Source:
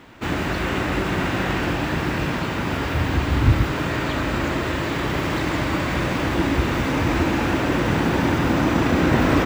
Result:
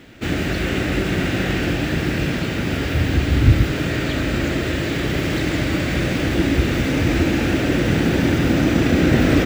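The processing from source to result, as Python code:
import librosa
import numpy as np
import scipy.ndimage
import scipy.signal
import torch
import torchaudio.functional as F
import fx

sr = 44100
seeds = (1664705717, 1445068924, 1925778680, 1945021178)

y = fx.peak_eq(x, sr, hz=1000.0, db=-14.5, octaves=0.71)
y = y * librosa.db_to_amplitude(3.5)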